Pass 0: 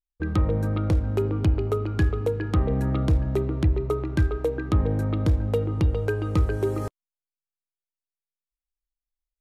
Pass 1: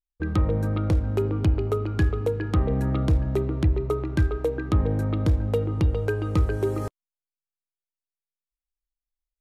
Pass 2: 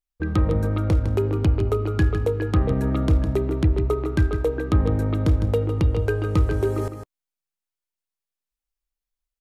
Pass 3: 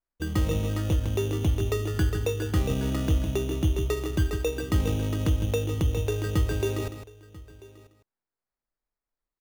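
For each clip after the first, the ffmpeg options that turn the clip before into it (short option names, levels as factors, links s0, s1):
-af anull
-af "aecho=1:1:156:0.355,volume=1.26"
-af "acrusher=samples=14:mix=1:aa=0.000001,aecho=1:1:990:0.0891,volume=0.562"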